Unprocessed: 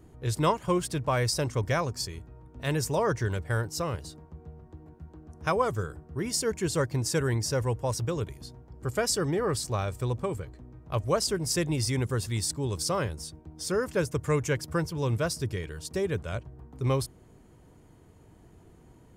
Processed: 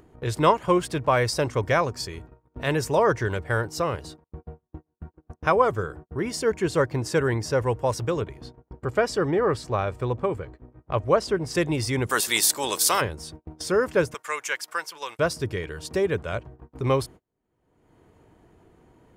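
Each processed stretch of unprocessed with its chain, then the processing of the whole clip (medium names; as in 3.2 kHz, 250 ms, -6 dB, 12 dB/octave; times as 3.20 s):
4.24–7.66 s: expander -45 dBFS + treble shelf 3.7 kHz -4.5 dB
8.21–11.55 s: low-pass 2.8 kHz 6 dB/octave + gate with hold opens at -40 dBFS, closes at -46 dBFS
12.09–13.00 s: spectral peaks clipped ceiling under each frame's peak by 17 dB + RIAA curve recording
14.14–15.19 s: high-pass 1.1 kHz + treble shelf 4 kHz +6 dB
whole clip: gate -44 dBFS, range -37 dB; tone controls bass -7 dB, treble -9 dB; upward compressor, threshold -37 dBFS; trim +7 dB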